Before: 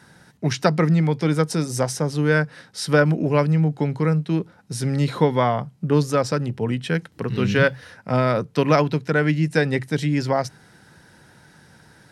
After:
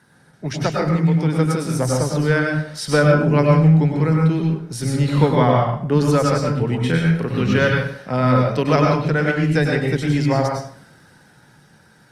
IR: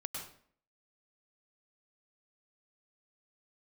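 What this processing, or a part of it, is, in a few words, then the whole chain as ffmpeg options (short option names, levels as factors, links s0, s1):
far-field microphone of a smart speaker: -filter_complex "[0:a]asettb=1/sr,asplit=3[s0][s1][s2];[s0]atrim=end=6.814[s3];[s1]atrim=start=6.81:end=7.29,asetpts=PTS-STARTPTS,afade=t=in:d=0.004:c=qsin,afade=t=out:st=0.476:d=0.004:c=qsin,asplit=2[s4][s5];[s5]adelay=36,volume=0.668[s6];[s4][s6]amix=inputs=2:normalize=0,atrim=end_sample=21168[s7];[s2]atrim=start=7.286[s8];[s3][s7]acrossfade=d=0.004:c1=hsin:c2=qsin[s9];[s9][s8]acrossfade=d=0.004:c1=qsin:c2=hsin[s10];[1:a]atrim=start_sample=2205[s11];[s10][s11]afir=irnorm=-1:irlink=0,highpass=89,dynaudnorm=f=270:g=11:m=3.76,volume=0.891" -ar 48000 -c:a libopus -b:a 32k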